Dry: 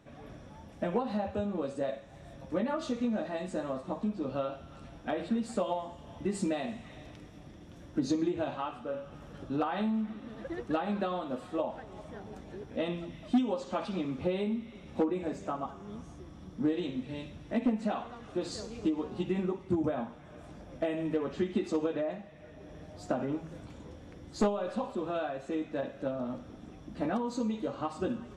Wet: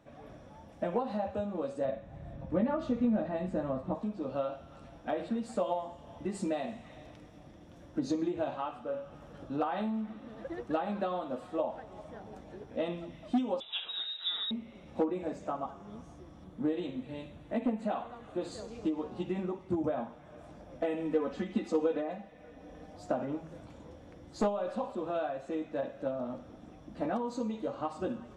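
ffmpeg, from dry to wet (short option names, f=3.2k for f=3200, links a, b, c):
-filter_complex "[0:a]asettb=1/sr,asplit=3[a][b][c];[a]atrim=end=1.854[d];[b]atrim=start=1.85:end=3.95,asetpts=PTS-STARTPTS,afade=t=in:d=0.004:c=qsin,afade=t=out:st=2.096:d=0.004:c=qsin,bass=f=250:g=11,treble=f=4k:g=-11[e];[c]atrim=start=3.946[f];[d][e]acrossfade=d=0.004:c1=hsin:c2=qsin[g];[g][f]acrossfade=d=0.004:c1=qsin:c2=hsin,asettb=1/sr,asplit=3[h][i][j];[h]atrim=end=13.604[k];[i]atrim=start=13.6:end=14.51,asetpts=PTS-STARTPTS,afade=t=in:d=0.004:c=qsin,afade=t=out:st=0.906:d=0.004:c=qsin,lowpass=f=3.4k:t=q:w=0.5098,lowpass=f=3.4k:t=q:w=0.6013,lowpass=f=3.4k:t=q:w=0.9,lowpass=f=3.4k:t=q:w=2.563,afreqshift=-4000[l];[j]atrim=start=14.506[m];[k][l]acrossfade=d=0.004:c1=hsin:c2=qsin[n];[n][m]acrossfade=d=0.004:c1=qsin:c2=hsin,asettb=1/sr,asplit=3[o][p][q];[o]atrim=end=16.444[r];[p]atrim=start=16.44:end=18.68,asetpts=PTS-STARTPTS,afade=t=in:d=0.004:c=qsin,afade=t=out:st=2.236:d=0.004:c=qsin,equalizer=f=5.4k:t=o:w=0.27:g=-12[s];[q]atrim=start=18.676[t];[r][s]acrossfade=d=0.004:c1=hsin:c2=qsin[u];[u][t]acrossfade=d=0.004:c1=qsin:c2=hsin,asettb=1/sr,asplit=3[v][w][x];[v]atrim=end=20.824[y];[w]atrim=start=20.82:end=22.97,asetpts=PTS-STARTPTS,afade=t=in:d=0.004:c=qsin,afade=t=out:st=2.146:d=0.004:c=qsin,aecho=1:1:4:0.64,atrim=end_sample=94815[z];[x]atrim=start=22.966[aa];[y][z]acrossfade=d=0.004:c1=hsin:c2=qsin[ab];[ab][aa]acrossfade=d=0.004:c1=qsin:c2=hsin,equalizer=f=640:t=o:w=1.8:g=5.5,bandreject=f=400:w=12,volume=-4.5dB"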